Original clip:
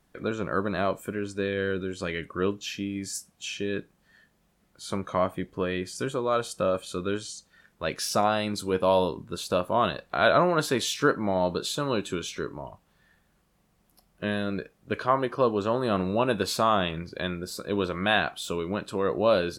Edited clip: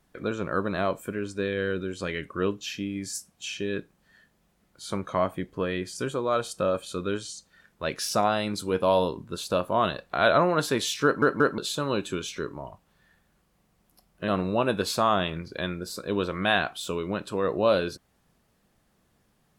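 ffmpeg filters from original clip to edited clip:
-filter_complex "[0:a]asplit=5[a][b][c][d][e];[a]atrim=end=11.222[f];[b]atrim=start=11.038:end=11.222[g];[c]atrim=start=11.038:end=11.222[h];[d]atrim=start=11.578:end=14.282[i];[e]atrim=start=15.888[j];[f][g]acrossfade=d=0.004:c1=hsin:c2=hsin[k];[k][h]acrossfade=d=0.004:c1=hsin:c2=hsin[l];[l][i]acrossfade=d=0.004:c1=hsin:c2=hsin[m];[m][j]acrossfade=d=0.004:c1=hsin:c2=hsin"

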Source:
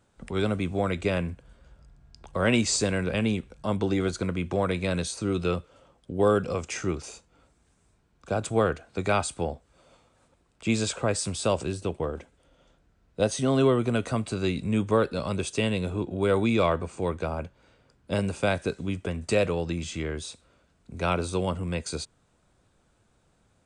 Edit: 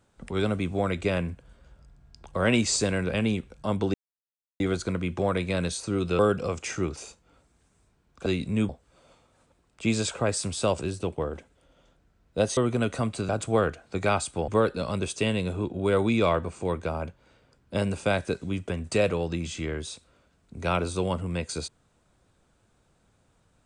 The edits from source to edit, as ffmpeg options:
-filter_complex "[0:a]asplit=8[a][b][c][d][e][f][g][h];[a]atrim=end=3.94,asetpts=PTS-STARTPTS,afade=t=out:st=3.936:d=0.004:c=hsin,apad=pad_dur=0.66[i];[b]atrim=start=3.94:end=5.532,asetpts=PTS-STARTPTS,afade=t=in:d=0.004:c=hsin[j];[c]atrim=start=6.248:end=8.322[k];[d]atrim=start=14.418:end=14.852[l];[e]atrim=start=9.508:end=13.392[m];[f]atrim=start=13.698:end=14.422[n];[g]atrim=start=8.318:end=9.512[o];[h]atrim=start=14.848[p];[i][j]concat=n=2:v=0:a=1[q];[q][k]acrossfade=d=0.004:c1=hsin:c2=hsin[r];[r][l]acrossfade=d=0.004:c1=hsin:c2=hsin[s];[s][m]acrossfade=d=0.004:c1=hsin:c2=hsin[t];[t][n]acrossfade=d=0.004:c1=hsin:c2=hsin[u];[u][o]acrossfade=d=0.004:c1=hsin:c2=hsin[v];[v][p]acrossfade=d=0.004:c1=hsin:c2=hsin"

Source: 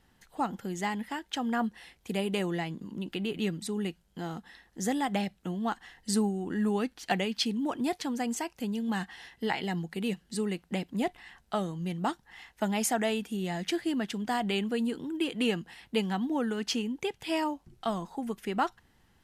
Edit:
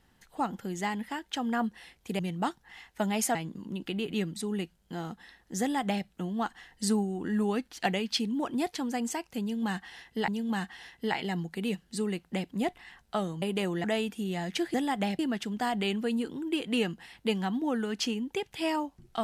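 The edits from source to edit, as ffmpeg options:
-filter_complex "[0:a]asplit=8[a][b][c][d][e][f][g][h];[a]atrim=end=2.192[i];[b]atrim=start=11.808:end=12.972[j];[c]atrim=start=2.608:end=9.542[k];[d]atrim=start=8.668:end=11.812[l];[e]atrim=start=2.188:end=2.612[m];[f]atrim=start=12.968:end=13.872[n];[g]atrim=start=4.868:end=5.322[o];[h]atrim=start=13.868[p];[i][j]acrossfade=d=0.004:c1=hsin:c2=hsin[q];[q][k]acrossfade=d=0.004:c1=hsin:c2=hsin[r];[r][l]acrossfade=d=0.004:c1=hsin:c2=hsin[s];[s][m]acrossfade=d=0.004:c1=hsin:c2=hsin[t];[t][n]acrossfade=d=0.004:c1=hsin:c2=hsin[u];[u][o]acrossfade=d=0.004:c1=hsin:c2=hsin[v];[v][p]acrossfade=d=0.004:c1=hsin:c2=hsin"

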